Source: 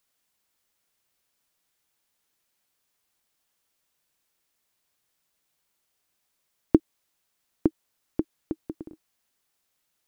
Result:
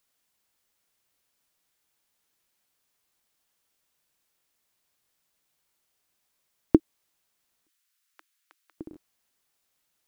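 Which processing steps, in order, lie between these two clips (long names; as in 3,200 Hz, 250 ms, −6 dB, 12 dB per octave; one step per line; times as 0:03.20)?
0:07.66–0:08.78: high-pass filter 1,300 Hz 24 dB per octave
regular buffer underruns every 0.65 s, samples 1,024, repeat, from 0:00.47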